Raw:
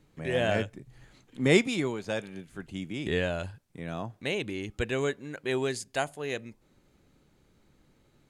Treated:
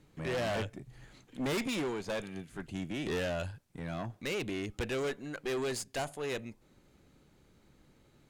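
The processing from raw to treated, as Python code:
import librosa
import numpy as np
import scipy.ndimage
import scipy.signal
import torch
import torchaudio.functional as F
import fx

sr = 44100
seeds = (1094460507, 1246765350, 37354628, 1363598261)

y = fx.tube_stage(x, sr, drive_db=33.0, bias=0.45)
y = F.gain(torch.from_numpy(y), 2.5).numpy()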